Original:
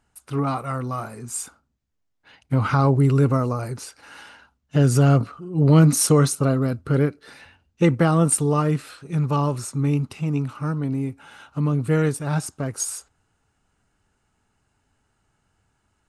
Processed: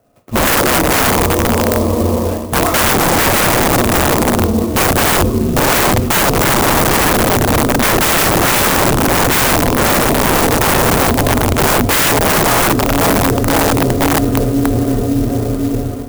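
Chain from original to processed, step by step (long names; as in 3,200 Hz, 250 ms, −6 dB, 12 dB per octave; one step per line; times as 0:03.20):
feedback delay with all-pass diffusion 609 ms, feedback 64%, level −9 dB
automatic gain control gain up to 14 dB
in parallel at −4 dB: slack as between gear wheels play −26 dBFS
on the sum: flat-topped bell 540 Hz +13 dB
feedback delay network reverb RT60 0.42 s, low-frequency decay 1×, high-frequency decay 1×, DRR 3.5 dB
single-sideband voice off tune −190 Hz 150–3,400 Hz
wrap-around overflow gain 3 dB
reversed playback
downward compressor 6 to 1, threshold −16 dBFS, peak gain reduction 10 dB
reversed playback
converter with an unsteady clock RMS 0.062 ms
level +5.5 dB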